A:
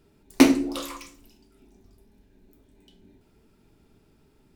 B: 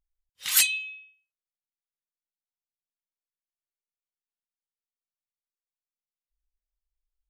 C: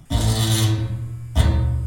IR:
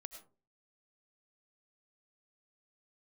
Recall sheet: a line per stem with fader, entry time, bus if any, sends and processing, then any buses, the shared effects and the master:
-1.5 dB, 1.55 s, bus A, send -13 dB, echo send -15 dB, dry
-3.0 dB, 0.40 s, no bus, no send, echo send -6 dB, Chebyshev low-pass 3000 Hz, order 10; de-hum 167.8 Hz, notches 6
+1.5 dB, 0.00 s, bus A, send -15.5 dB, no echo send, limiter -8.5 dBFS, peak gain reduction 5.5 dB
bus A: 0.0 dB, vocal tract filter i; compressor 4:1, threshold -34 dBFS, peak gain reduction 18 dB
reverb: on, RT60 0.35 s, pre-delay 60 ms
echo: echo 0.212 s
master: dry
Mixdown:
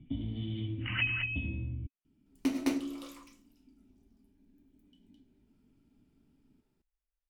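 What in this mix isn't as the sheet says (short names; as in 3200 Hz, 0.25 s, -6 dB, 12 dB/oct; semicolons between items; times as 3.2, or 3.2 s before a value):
stem A: entry 1.55 s -> 2.05 s; stem C: send off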